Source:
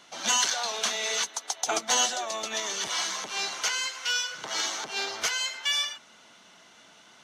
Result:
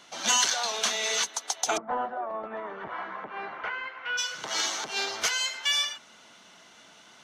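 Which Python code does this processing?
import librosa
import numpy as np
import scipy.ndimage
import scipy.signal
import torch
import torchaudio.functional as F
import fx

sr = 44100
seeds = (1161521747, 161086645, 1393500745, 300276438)

y = fx.lowpass(x, sr, hz=fx.line((1.76, 1200.0), (4.17, 2200.0)), slope=24, at=(1.76, 4.17), fade=0.02)
y = F.gain(torch.from_numpy(y), 1.0).numpy()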